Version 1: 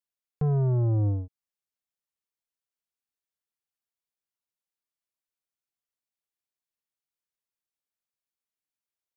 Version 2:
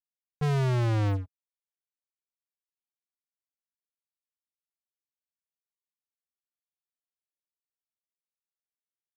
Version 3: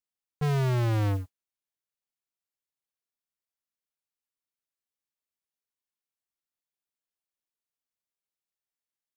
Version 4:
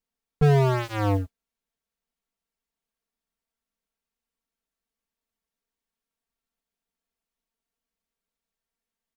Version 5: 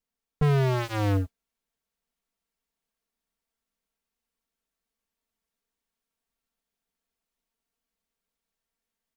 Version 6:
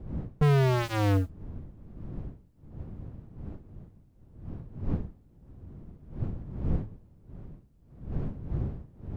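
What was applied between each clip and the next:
gate -25 dBFS, range -20 dB; waveshaping leveller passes 5
modulation noise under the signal 29 dB
tilt EQ -2 dB/octave; comb 4.4 ms, depth 100%; trim +4 dB
in parallel at -2.5 dB: gain riding; on the sum: hard clipper -12 dBFS, distortion -11 dB; trim -4.5 dB
wind noise 140 Hz -37 dBFS

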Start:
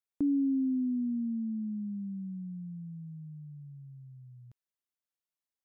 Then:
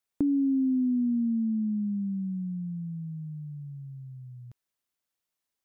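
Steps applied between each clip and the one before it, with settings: compression, threshold -30 dBFS, peak gain reduction 4.5 dB; trim +7 dB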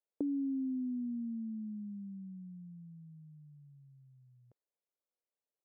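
band-pass filter 500 Hz, Q 2.6; trim +1 dB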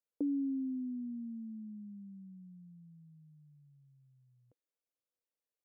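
small resonant body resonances 290/490 Hz, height 7 dB; trim -5.5 dB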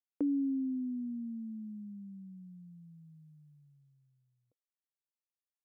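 expander -60 dBFS; trim +2.5 dB

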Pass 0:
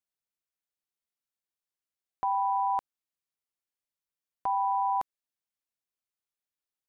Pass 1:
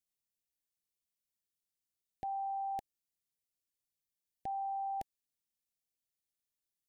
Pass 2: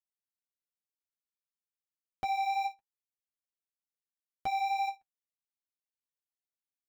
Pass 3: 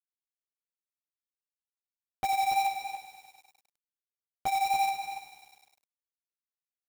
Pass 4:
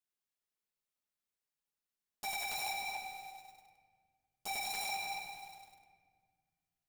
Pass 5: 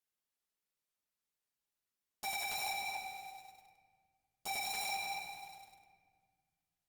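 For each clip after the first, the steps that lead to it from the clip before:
elliptic band-stop 810–1700 Hz, stop band 40 dB; peaking EQ 1.1 kHz -10.5 dB 2.9 oct; trim +2.5 dB
waveshaping leveller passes 5; flange 1.4 Hz, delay 7.6 ms, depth 5.2 ms, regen -26%; endings held to a fixed fall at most 380 dB/s
companded quantiser 4-bit; echo from a far wall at 49 m, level -7 dB; bit-crushed delay 101 ms, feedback 80%, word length 9-bit, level -13 dB; trim +2 dB
wavefolder -36 dBFS; simulated room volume 2500 m³, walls mixed, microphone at 1.4 m; trim +1 dB
Opus 64 kbps 48 kHz

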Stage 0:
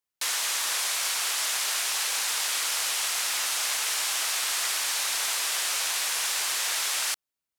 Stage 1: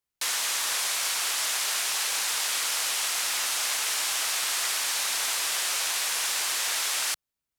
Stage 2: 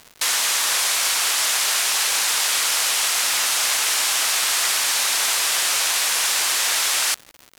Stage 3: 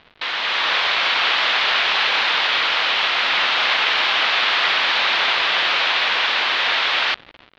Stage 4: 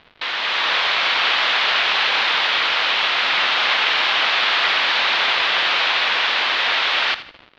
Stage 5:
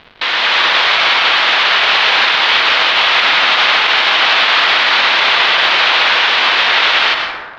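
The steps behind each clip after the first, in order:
bass shelf 150 Hz +10.5 dB
crackle 240 per s -38 dBFS; trim +7.5 dB
level rider; steep low-pass 3.8 kHz 36 dB/octave
thinning echo 80 ms, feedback 33%, level -14 dB
on a send at -5.5 dB: reverberation RT60 1.3 s, pre-delay 88 ms; on the sum: loudness maximiser +9.5 dB; trim -1 dB

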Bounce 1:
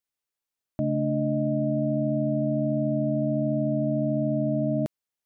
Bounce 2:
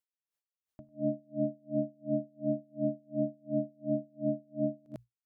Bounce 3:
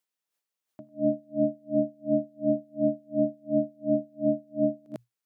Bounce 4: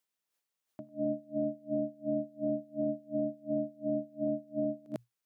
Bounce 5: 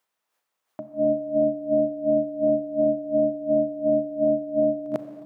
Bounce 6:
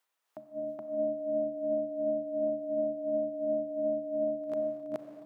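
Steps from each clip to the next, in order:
hum notches 60/120 Hz; on a send: multi-tap echo 59/81/98 ms -13/-9.5/-3 dB; on the sum: logarithmic tremolo 2.8 Hz, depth 37 dB; trim -3 dB
high-pass 190 Hz 12 dB/octave; trim +7 dB
peak limiter -24 dBFS, peak gain reduction 10.5 dB
peaking EQ 930 Hz +11 dB 2.6 oct; Schroeder reverb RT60 2.7 s, combs from 29 ms, DRR 9.5 dB; trim +3 dB
bass shelf 340 Hz -10 dB; compression 2.5:1, threshold -29 dBFS, peak gain reduction 6 dB; reverse echo 423 ms -4 dB; trim -3 dB

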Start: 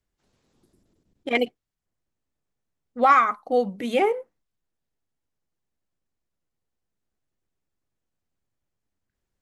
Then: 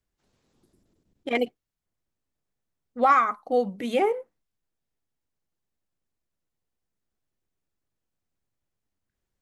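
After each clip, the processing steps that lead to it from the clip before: dynamic bell 2.9 kHz, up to -4 dB, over -31 dBFS, Q 0.83; trim -1.5 dB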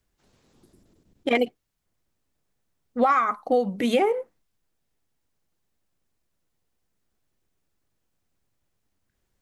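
compression 6:1, threshold -25 dBFS, peak gain reduction 10 dB; trim +7.5 dB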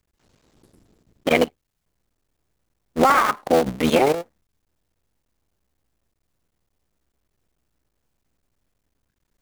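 cycle switcher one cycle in 3, muted; in parallel at -11.5 dB: bit crusher 4-bit; on the sum: trim +3.5 dB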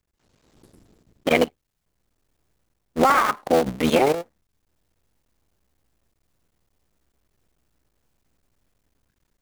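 level rider gain up to 8 dB; trim -4.5 dB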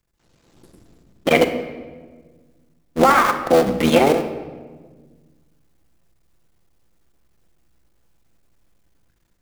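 reverberation RT60 1.5 s, pre-delay 6 ms, DRR 6.5 dB; trim +3 dB

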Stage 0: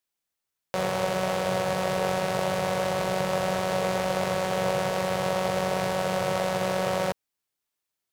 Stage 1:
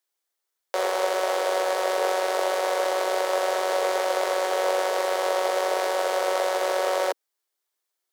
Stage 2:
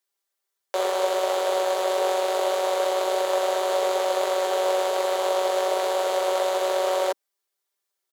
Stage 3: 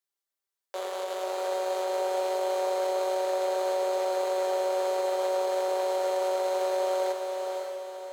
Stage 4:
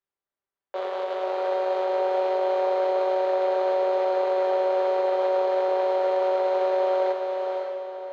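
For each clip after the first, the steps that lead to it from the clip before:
steep high-pass 320 Hz 48 dB/octave; peaking EQ 2.6 kHz -5 dB 0.3 oct; trim +3 dB
comb 5.1 ms, depth 66%; trim -1.5 dB
peak limiter -17 dBFS, peak gain reduction 4.5 dB; on a send: echo that smears into a reverb 555 ms, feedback 47%, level -4 dB; on the sum: trim -8 dB
distance through air 300 m; tape noise reduction on one side only decoder only; trim +5.5 dB

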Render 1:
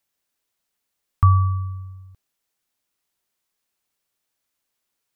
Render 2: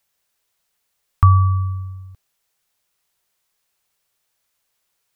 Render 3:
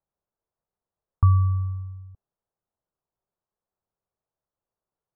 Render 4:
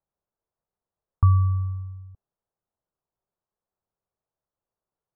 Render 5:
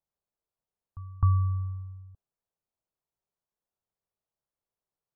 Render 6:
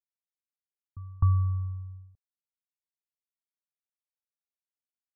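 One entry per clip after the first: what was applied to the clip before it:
peaking EQ 270 Hz -10 dB 0.61 oct; in parallel at -2.5 dB: compression, threshold -22 dBFS, peak gain reduction 11 dB; on the sum: trim +1.5 dB
Gaussian low-pass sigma 8.2 samples; trim -5 dB
no audible change
pre-echo 259 ms -19.5 dB; trim -5 dB
expander -43 dBFS; low-pass 1.1 kHz; vibrato 0.43 Hz 16 cents

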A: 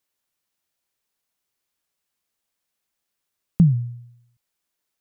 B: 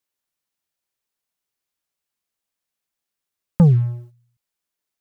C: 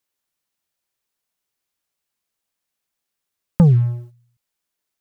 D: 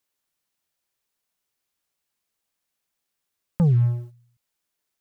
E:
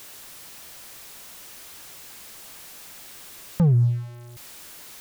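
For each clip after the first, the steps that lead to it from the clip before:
waveshaping leveller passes 2
compression 2:1, threshold -14 dBFS, peak gain reduction 3 dB; trim +3 dB
peak limiter -14.5 dBFS, peak gain reduction 10 dB
jump at every zero crossing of -37 dBFS

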